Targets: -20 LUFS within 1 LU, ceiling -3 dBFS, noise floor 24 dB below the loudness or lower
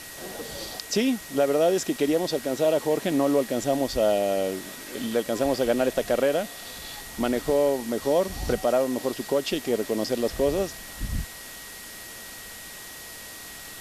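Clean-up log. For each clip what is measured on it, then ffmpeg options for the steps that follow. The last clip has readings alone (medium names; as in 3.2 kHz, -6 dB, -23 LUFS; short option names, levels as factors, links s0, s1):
steady tone 1.9 kHz; tone level -46 dBFS; noise floor -41 dBFS; noise floor target -50 dBFS; loudness -25.5 LUFS; peak level -12.0 dBFS; loudness target -20.0 LUFS
-> -af "bandreject=f=1900:w=30"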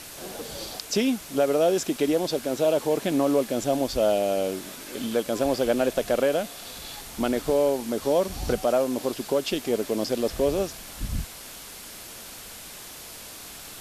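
steady tone not found; noise floor -42 dBFS; noise floor target -50 dBFS
-> -af "afftdn=nr=8:nf=-42"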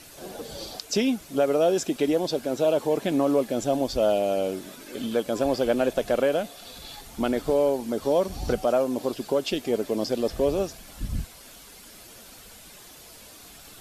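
noise floor -48 dBFS; noise floor target -50 dBFS
-> -af "afftdn=nr=6:nf=-48"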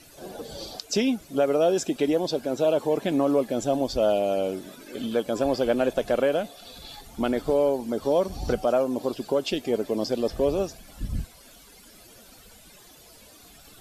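noise floor -51 dBFS; loudness -25.5 LUFS; peak level -12.5 dBFS; loudness target -20.0 LUFS
-> -af "volume=1.88"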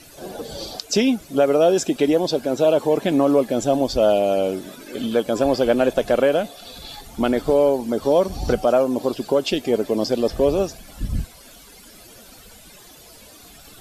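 loudness -20.0 LUFS; peak level -7.0 dBFS; noise floor -46 dBFS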